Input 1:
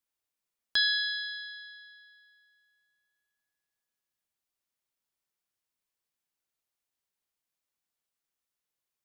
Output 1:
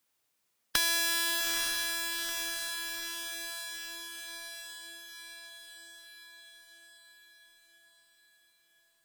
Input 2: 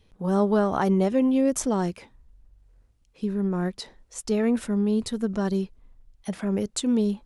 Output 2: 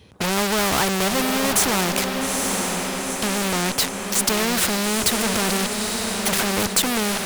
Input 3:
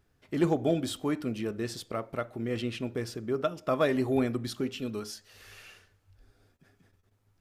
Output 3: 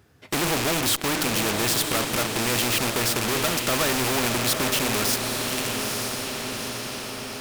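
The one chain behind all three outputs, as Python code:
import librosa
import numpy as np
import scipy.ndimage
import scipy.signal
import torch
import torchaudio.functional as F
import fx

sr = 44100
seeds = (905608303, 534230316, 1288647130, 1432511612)

p1 = fx.rattle_buzz(x, sr, strikes_db=-37.0, level_db=-34.0)
p2 = scipy.signal.sosfilt(scipy.signal.butter(4, 74.0, 'highpass', fs=sr, output='sos'), p1)
p3 = fx.dynamic_eq(p2, sr, hz=5900.0, q=1.2, threshold_db=-48.0, ratio=4.0, max_db=-4)
p4 = fx.fuzz(p3, sr, gain_db=49.0, gate_db=-44.0)
p5 = p3 + F.gain(torch.from_numpy(p4), -8.5).numpy()
p6 = fx.echo_diffused(p5, sr, ms=884, feedback_pct=47, wet_db=-8.5)
y = fx.spectral_comp(p6, sr, ratio=2.0)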